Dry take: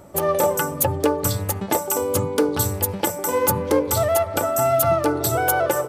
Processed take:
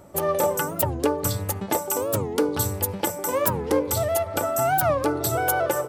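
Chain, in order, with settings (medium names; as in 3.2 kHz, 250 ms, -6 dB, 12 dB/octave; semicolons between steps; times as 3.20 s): 3.84–4.26 s: dynamic bell 1.2 kHz, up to -5 dB, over -33 dBFS, Q 1.3; warped record 45 rpm, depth 250 cents; trim -3 dB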